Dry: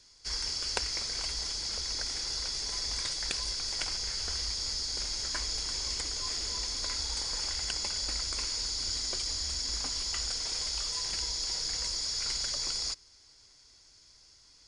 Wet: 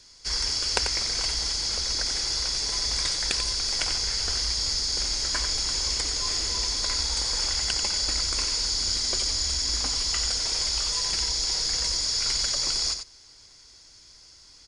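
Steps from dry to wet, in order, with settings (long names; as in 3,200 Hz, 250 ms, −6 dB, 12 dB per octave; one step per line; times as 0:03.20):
single-tap delay 91 ms −8 dB
level +6.5 dB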